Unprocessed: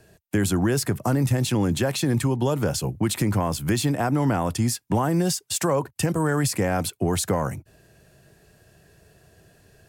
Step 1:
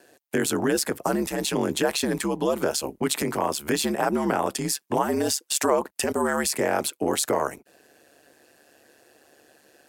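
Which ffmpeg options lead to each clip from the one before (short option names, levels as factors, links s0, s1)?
-af "highpass=f=270:w=0.5412,highpass=f=270:w=1.3066,aeval=exprs='val(0)*sin(2*PI*72*n/s)':c=same,volume=1.68"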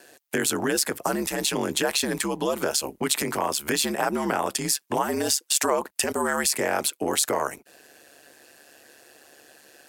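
-filter_complex "[0:a]tiltshelf=f=970:g=-3.5,asplit=2[s0][s1];[s1]acompressor=threshold=0.0251:ratio=6,volume=1.06[s2];[s0][s2]amix=inputs=2:normalize=0,volume=0.75"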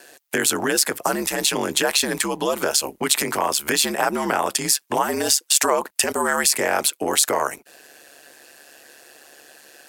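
-af "lowshelf=f=390:g=-6.5,volume=1.88"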